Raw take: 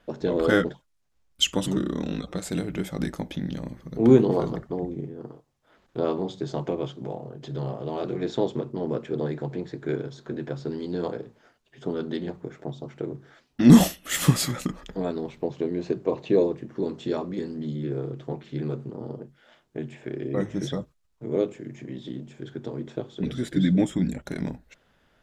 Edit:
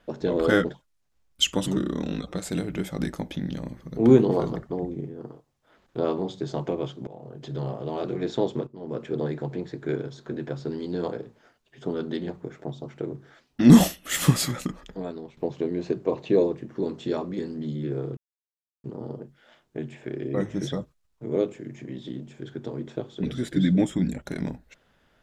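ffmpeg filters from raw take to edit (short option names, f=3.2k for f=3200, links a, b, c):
-filter_complex "[0:a]asplit=6[a][b][c][d][e][f];[a]atrim=end=7.07,asetpts=PTS-STARTPTS,afade=t=out:st=7.066:d=0.004:c=hsin:silence=0.158489[g];[b]atrim=start=7.07:end=8.67,asetpts=PTS-STARTPTS,afade=t=in:d=0.31:silence=0.158489,afade=t=out:st=1.596:d=0.004:c=hsin:silence=0.211349[h];[c]atrim=start=8.67:end=15.37,asetpts=PTS-STARTPTS,afade=t=in:d=0.36:c=qua:silence=0.211349,afade=t=out:st=5.81:d=0.89:silence=0.298538[i];[d]atrim=start=15.37:end=18.17,asetpts=PTS-STARTPTS,afade=t=in:d=0.004:c=hsin:silence=0.298538,afade=t=out:st=2.796:d=0.004:c=hsin[j];[e]atrim=start=18.17:end=18.84,asetpts=PTS-STARTPTS,volume=0[k];[f]atrim=start=18.84,asetpts=PTS-STARTPTS,afade=t=in:d=0.004:c=hsin[l];[g][h][i][j][k][l]concat=n=6:v=0:a=1"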